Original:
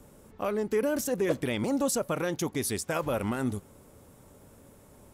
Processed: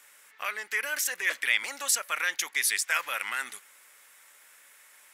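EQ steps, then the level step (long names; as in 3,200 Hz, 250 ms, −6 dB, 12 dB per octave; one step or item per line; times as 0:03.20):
high-pass with resonance 1,900 Hz, resonance Q 2.6
+6.0 dB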